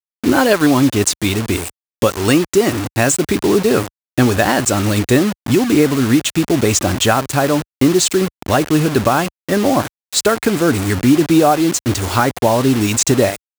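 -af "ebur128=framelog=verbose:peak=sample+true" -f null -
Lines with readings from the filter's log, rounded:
Integrated loudness:
  I:         -15.1 LUFS
  Threshold: -25.1 LUFS
Loudness range:
  LRA:         1.4 LU
  Threshold: -35.2 LUFS
  LRA low:   -16.0 LUFS
  LRA high:  -14.6 LUFS
Sample peak:
  Peak:       -1.3 dBFS
True peak:
  Peak:       -1.2 dBFS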